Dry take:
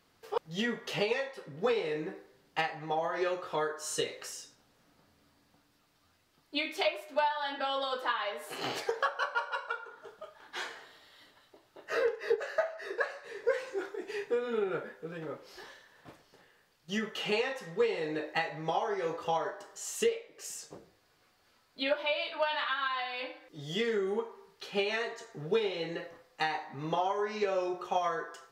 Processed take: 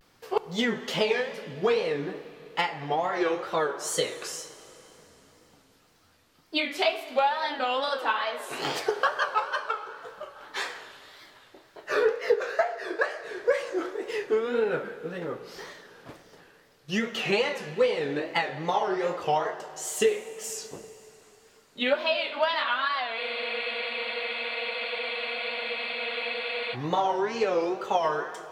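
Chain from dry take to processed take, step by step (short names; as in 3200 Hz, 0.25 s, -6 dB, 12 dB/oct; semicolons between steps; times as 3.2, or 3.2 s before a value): wow and flutter 150 cents; in parallel at -1.5 dB: vocal rider within 3 dB 2 s; on the sum: plate-style reverb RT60 3.7 s, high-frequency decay 0.95×, DRR 13 dB; spectral freeze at 23.2, 3.54 s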